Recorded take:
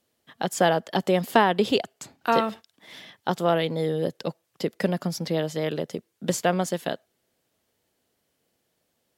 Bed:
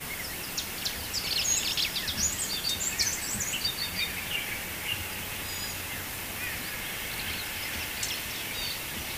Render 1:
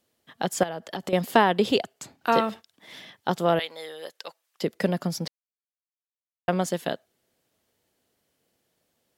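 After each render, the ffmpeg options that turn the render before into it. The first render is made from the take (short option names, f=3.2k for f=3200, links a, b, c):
-filter_complex "[0:a]asettb=1/sr,asplit=3[a][b][c];[a]atrim=end=0.634[d];[b]atrim=start=0.63:end=1.13,asetpts=PTS-STARTPTS,afade=t=in:d=0.004:c=qsin,afade=t=out:st=0.496:d=0.004:c=qsin,acompressor=threshold=-27dB:ratio=16:attack=3.2:release=140:knee=1:detection=peak[e];[c]atrim=start=1.126[f];[d][e]acrossfade=d=0.004:c1=hsin:c2=qsin[g];[g][f]acrossfade=d=0.004:c1=qsin:c2=hsin,asettb=1/sr,asplit=3[h][i][j];[h]atrim=end=3.594[k];[i]atrim=start=3.59:end=4.62,asetpts=PTS-STARTPTS,afade=t=in:d=0.004:c=qsin,afade=t=out:st=1.026:d=0.004:c=qsin,highpass=1k[l];[j]atrim=start=4.616[m];[k][l]acrossfade=d=0.004:c1=hsin:c2=qsin[n];[n][m]acrossfade=d=0.004:c1=qsin:c2=hsin,asplit=3[o][p][q];[o]atrim=end=5.28,asetpts=PTS-STARTPTS,afade=t=out:st=5.276:d=0.004:c=hsin[r];[p]atrim=start=5.28:end=6.48,asetpts=PTS-STARTPTS,volume=0[s];[q]atrim=start=6.48,asetpts=PTS-STARTPTS,afade=t=in:d=0.004:c=hsin[t];[r][s][t]concat=n=3:v=0:a=1"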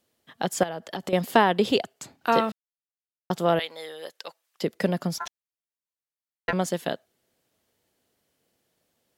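-filter_complex "[0:a]asettb=1/sr,asplit=3[a][b][c];[a]atrim=end=5.184[d];[b]atrim=start=5.18:end=6.53,asetpts=PTS-STARTPTS,afade=t=in:d=0.004:c=qsin,afade=t=out:st=1.346:d=0.004:c=qsin,aeval=exprs='val(0)*sin(2*PI*1200*n/s)':c=same[e];[c]atrim=start=6.526[f];[d][e]acrossfade=d=0.004:c1=hsin:c2=qsin[g];[g][f]acrossfade=d=0.004:c1=qsin:c2=hsin,asplit=3[h][i][j];[h]atrim=end=2.52,asetpts=PTS-STARTPTS,afade=t=out:st=2.516:d=0.004:c=hsin[k];[i]atrim=start=2.52:end=3.3,asetpts=PTS-STARTPTS,volume=0[l];[j]atrim=start=3.3,asetpts=PTS-STARTPTS,afade=t=in:d=0.004:c=hsin[m];[k][l][m]concat=n=3:v=0:a=1"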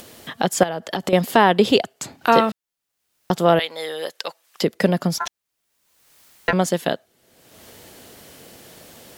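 -filter_complex "[0:a]asplit=2[a][b];[b]acompressor=mode=upward:threshold=-24dB:ratio=2.5,volume=2dB[c];[a][c]amix=inputs=2:normalize=0,alimiter=level_in=-0.5dB:limit=-1dB:release=50:level=0:latency=1"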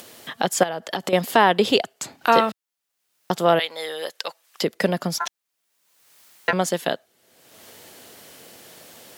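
-af "highpass=82,lowshelf=f=340:g=-7"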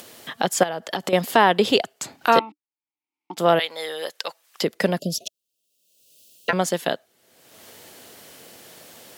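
-filter_complex "[0:a]asettb=1/sr,asplit=3[a][b][c];[a]atrim=end=2.394[d];[b]atrim=start=2.39:end=3.37,asetpts=PTS-STARTPTS,afade=t=in:d=0.004:c=qsin,afade=t=out:st=0.976:d=0.004:c=qsin,asplit=3[e][f][g];[e]bandpass=f=300:t=q:w=8,volume=0dB[h];[f]bandpass=f=870:t=q:w=8,volume=-6dB[i];[g]bandpass=f=2.24k:t=q:w=8,volume=-9dB[j];[h][i][j]amix=inputs=3:normalize=0[k];[c]atrim=start=3.366[l];[d][k]acrossfade=d=0.004:c1=hsin:c2=qsin[m];[m][l]acrossfade=d=0.004:c1=qsin:c2=hsin,asettb=1/sr,asplit=3[n][o][p];[n]atrim=end=4.994[q];[o]atrim=start=4.99:end=6.49,asetpts=PTS-STARTPTS,afade=t=in:d=0.004:c=qsin,afade=t=out:st=1.496:d=0.004:c=qsin,asuperstop=centerf=1300:order=20:qfactor=0.66[r];[p]atrim=start=6.486[s];[q][r]acrossfade=d=0.004:c1=hsin:c2=qsin[t];[t][s]acrossfade=d=0.004:c1=qsin:c2=hsin"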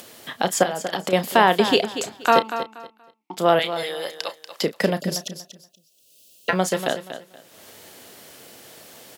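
-filter_complex "[0:a]asplit=2[a][b];[b]adelay=32,volume=-12.5dB[c];[a][c]amix=inputs=2:normalize=0,aecho=1:1:238|476|714:0.282|0.0648|0.0149"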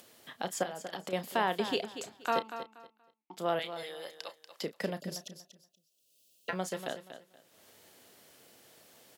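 -af "volume=-14dB"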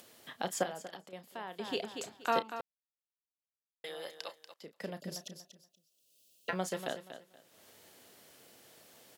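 -filter_complex "[0:a]asplit=6[a][b][c][d][e][f];[a]atrim=end=1.07,asetpts=PTS-STARTPTS,afade=t=out:st=0.68:d=0.39:silence=0.199526[g];[b]atrim=start=1.07:end=1.53,asetpts=PTS-STARTPTS,volume=-14dB[h];[c]atrim=start=1.53:end=2.61,asetpts=PTS-STARTPTS,afade=t=in:d=0.39:silence=0.199526,afade=t=out:st=1.076:d=0.004:c=hsin[i];[d]atrim=start=2.61:end=3.84,asetpts=PTS-STARTPTS,volume=0[j];[e]atrim=start=3.84:end=4.54,asetpts=PTS-STARTPTS,afade=t=in:d=0.004:c=hsin,afade=t=out:st=0.696:d=0.004:c=hsin:silence=0.0841395[k];[f]atrim=start=4.54,asetpts=PTS-STARTPTS,afade=t=in:d=0.78:silence=0.0841395[l];[g][h][i][j][k][l]concat=n=6:v=0:a=1"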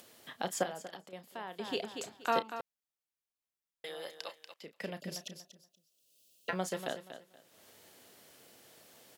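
-filter_complex "[0:a]asettb=1/sr,asplit=3[a][b][c];[a]atrim=end=4.284[d];[b]atrim=start=4.28:end=5.43,asetpts=PTS-STARTPTS,afade=t=in:d=0.004:c=qsin,afade=t=out:st=1.146:d=0.004:c=qsin,equalizer=f=2.5k:w=1.7:g=7[e];[c]atrim=start=5.426[f];[d][e]acrossfade=d=0.004:c1=hsin:c2=qsin[g];[g][f]acrossfade=d=0.004:c1=qsin:c2=hsin"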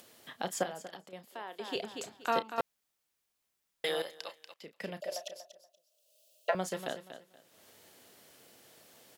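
-filter_complex "[0:a]asettb=1/sr,asplit=3[a][b][c];[a]atrim=end=1.254[d];[b]atrim=start=1.25:end=1.76,asetpts=PTS-STARTPTS,afade=t=in:d=0.004:c=qsin,afade=t=out:st=0.506:d=0.004:c=qsin,highpass=f=250:w=0.5412,highpass=f=250:w=1.3066[e];[c]atrim=start=1.756[f];[d][e]acrossfade=d=0.004:c1=hsin:c2=qsin[g];[g][f]acrossfade=d=0.004:c1=qsin:c2=hsin,asettb=1/sr,asplit=3[h][i][j];[h]atrim=end=5.014[k];[i]atrim=start=5.01:end=6.55,asetpts=PTS-STARTPTS,afade=t=in:d=0.004:c=qsin,afade=t=out:st=1.536:d=0.004:c=qsin,highpass=f=620:t=q:w=7.7[l];[j]atrim=start=6.546[m];[k][l]acrossfade=d=0.004:c1=hsin:c2=qsin[n];[n][m]acrossfade=d=0.004:c1=qsin:c2=hsin,asplit=3[o][p][q];[o]atrim=end=2.582[r];[p]atrim=start=2.578:end=4.022,asetpts=PTS-STARTPTS,volume=11dB[s];[q]atrim=start=4.018[t];[r][s]acrossfade=d=0.004:c1=hsin:c2=hsin[u];[u][t]acrossfade=d=0.004:c1=hsin:c2=hsin"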